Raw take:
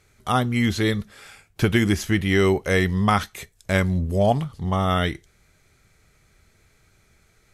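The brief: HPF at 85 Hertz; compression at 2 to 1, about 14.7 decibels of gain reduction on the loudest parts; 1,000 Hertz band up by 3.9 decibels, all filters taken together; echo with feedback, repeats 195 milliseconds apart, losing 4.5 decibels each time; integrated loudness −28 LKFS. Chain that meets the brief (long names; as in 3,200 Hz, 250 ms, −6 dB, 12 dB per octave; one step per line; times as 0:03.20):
high-pass filter 85 Hz
parametric band 1,000 Hz +5.5 dB
downward compressor 2 to 1, threshold −40 dBFS
repeating echo 195 ms, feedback 60%, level −4.5 dB
level +5 dB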